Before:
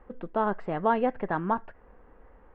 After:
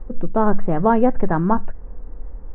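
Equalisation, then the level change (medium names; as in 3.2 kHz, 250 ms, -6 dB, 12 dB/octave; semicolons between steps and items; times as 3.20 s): tilt EQ -4.5 dB/octave; dynamic bell 1.4 kHz, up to +4 dB, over -37 dBFS, Q 0.75; hum notches 50/100/150/200 Hz; +3.0 dB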